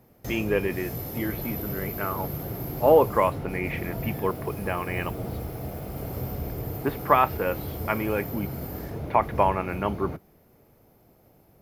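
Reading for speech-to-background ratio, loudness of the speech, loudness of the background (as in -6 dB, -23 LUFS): 7.0 dB, -27.0 LUFS, -34.0 LUFS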